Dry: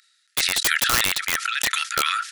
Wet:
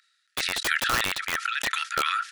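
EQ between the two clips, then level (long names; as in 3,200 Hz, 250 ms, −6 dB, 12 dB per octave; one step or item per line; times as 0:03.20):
low-shelf EQ 350 Hz −3.5 dB
high-shelf EQ 3,500 Hz −11.5 dB
notch filter 2,100 Hz, Q 26
0.0 dB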